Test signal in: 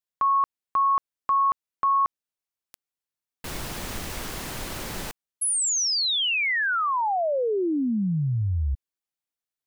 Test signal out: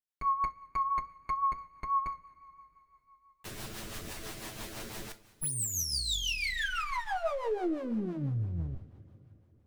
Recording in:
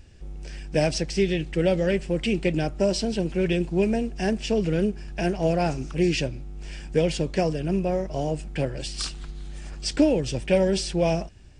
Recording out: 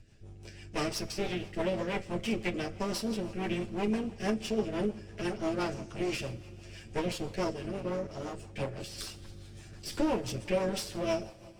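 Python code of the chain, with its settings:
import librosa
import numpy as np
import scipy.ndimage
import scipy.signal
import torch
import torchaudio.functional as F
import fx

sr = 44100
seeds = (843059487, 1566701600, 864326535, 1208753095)

y = fx.lower_of_two(x, sr, delay_ms=9.1)
y = fx.rev_double_slope(y, sr, seeds[0], early_s=0.31, late_s=3.7, knee_db=-18, drr_db=9.0)
y = fx.rotary(y, sr, hz=6.0)
y = y * 10.0 ** (-5.0 / 20.0)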